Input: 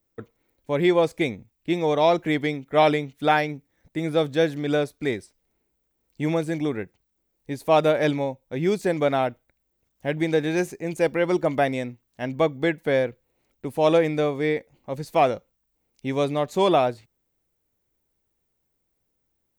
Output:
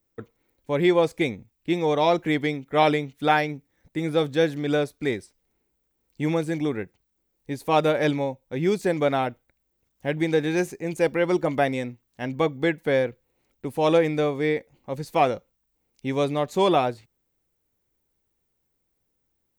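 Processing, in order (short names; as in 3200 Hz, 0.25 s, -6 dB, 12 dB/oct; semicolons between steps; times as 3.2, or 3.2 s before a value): notch 640 Hz, Q 12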